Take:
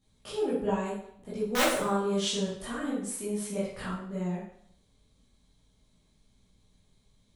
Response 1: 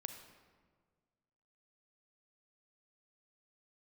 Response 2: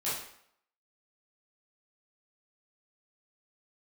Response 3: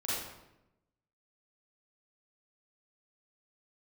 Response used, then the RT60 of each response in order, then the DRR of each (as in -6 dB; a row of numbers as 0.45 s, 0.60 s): 2; 1.6 s, 0.65 s, 0.90 s; 6.5 dB, -11.0 dB, -9.5 dB